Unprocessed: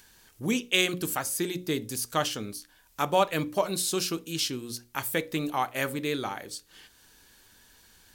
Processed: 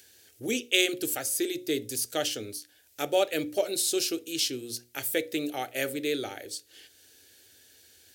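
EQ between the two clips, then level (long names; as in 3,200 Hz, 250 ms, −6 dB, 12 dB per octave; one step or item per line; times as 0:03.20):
high-pass filter 81 Hz 24 dB per octave
phaser with its sweep stopped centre 430 Hz, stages 4
+2.0 dB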